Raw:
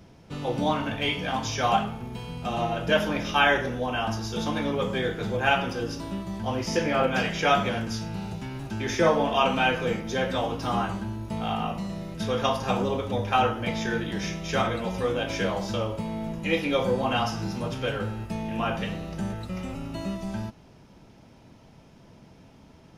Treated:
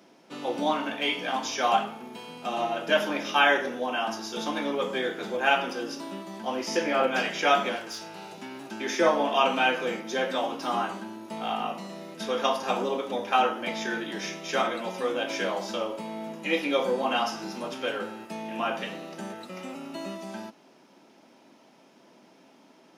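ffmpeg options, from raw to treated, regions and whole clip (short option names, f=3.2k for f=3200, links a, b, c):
-filter_complex "[0:a]asettb=1/sr,asplit=3[a][b][c];[a]atrim=end=7.764[d];[b]atrim=start=7.76:end=8.38,asetpts=PTS-STARTPTS,afade=t=in:d=0.004:c=qsin,afade=t=out:st=0.616:d=0.004:c=qsin,equalizer=f=230:w=3.2:g=-14,asoftclip=type=hard:threshold=-28.5dB[e];[c]atrim=start=8.376[f];[d][e]acrossfade=d=0.004:c1=hsin:c2=qsin[g];[g][f]acrossfade=d=0.004:c1=qsin:c2=hsin,highpass=f=250:w=0.5412,highpass=f=250:w=1.3066,bandreject=f=460:w=12"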